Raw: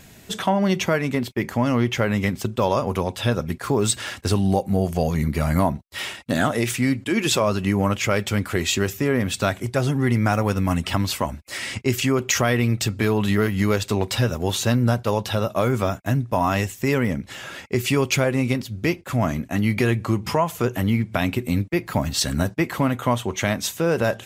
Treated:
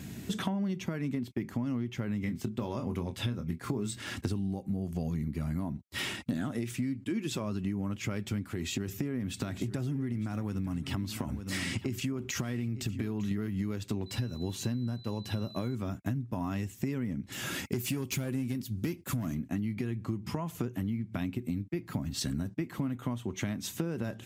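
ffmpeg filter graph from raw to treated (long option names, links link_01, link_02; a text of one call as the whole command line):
ffmpeg -i in.wav -filter_complex "[0:a]asettb=1/sr,asplit=3[link_01][link_02][link_03];[link_01]atrim=end=2.204[link_04];[link_02]atrim=start=2.2:end=4.04,asetpts=PTS-STARTPTS,afade=type=in:duration=0.004:curve=qsin,afade=type=out:start_time=1.836:duration=0.004:curve=qsin,equalizer=frequency=2100:width_type=o:width=0.22:gain=5,asplit=2[link_05][link_06];[link_06]adelay=24,volume=-8dB[link_07];[link_05][link_07]amix=inputs=2:normalize=0,atrim=end_sample=81144[link_08];[link_03]atrim=start=4.036[link_09];[link_04][link_08]acrossfade=duration=0.004:curve1=hsin:curve2=qsin[link_10];[link_10][link_09]acrossfade=duration=0.004:curve1=qsin:curve2=hsin,asettb=1/sr,asplit=3[link_11][link_12][link_13];[link_11]atrim=end=8.504[link_14];[link_12]atrim=start=8.5:end=13.31,asetpts=PTS-STARTPTS,afade=type=in:duration=0.004:curve=qsin,afade=type=out:start_time=4.806:duration=0.004:curve=qsin,acompressor=threshold=-24dB:ratio=2.5:attack=3.2:release=140:knee=1:detection=peak,aecho=1:1:907:0.178,atrim=end_sample=212121[link_15];[link_13]atrim=start=13.306[link_16];[link_14][link_15]acrossfade=duration=0.004:curve1=hsin:curve2=qsin[link_17];[link_17][link_16]acrossfade=duration=0.004:curve1=qsin:curve2=hsin,asettb=1/sr,asplit=3[link_18][link_19][link_20];[link_18]atrim=end=14.064[link_21];[link_19]atrim=start=14.06:end=15.75,asetpts=PTS-STARTPTS,afade=type=in:duration=0.004:curve=qsin,afade=type=out:start_time=1.686:duration=0.004:curve=qsin,equalizer=frequency=3700:width_type=o:width=0.21:gain=-7,bandreject=frequency=1300:width=12,aeval=exprs='val(0)+0.02*sin(2*PI*4000*n/s)':channel_layout=same[link_22];[link_20]atrim=start=15.746[link_23];[link_21][link_22]acrossfade=duration=0.004:curve1=hsin:curve2=qsin[link_24];[link_24][link_23]acrossfade=duration=0.004:curve1=qsin:curve2=hsin,asettb=1/sr,asplit=3[link_25][link_26][link_27];[link_25]atrim=end=17.324[link_28];[link_26]atrim=start=17.32:end=19.35,asetpts=PTS-STARTPTS,afade=type=in:duration=0.004:curve=qsin,afade=type=out:start_time=2.026:duration=0.004:curve=qsin,aemphasis=mode=production:type=50kf,aeval=exprs='clip(val(0),-1,0.141)':channel_layout=same[link_29];[link_27]atrim=start=19.346[link_30];[link_28][link_29]acrossfade=duration=0.004:curve1=hsin:curve2=qsin[link_31];[link_31][link_30]acrossfade=duration=0.004:curve1=qsin:curve2=hsin,highpass=75,lowshelf=frequency=390:width_type=q:width=1.5:gain=8.5,acompressor=threshold=-28dB:ratio=12,volume=-2dB" out.wav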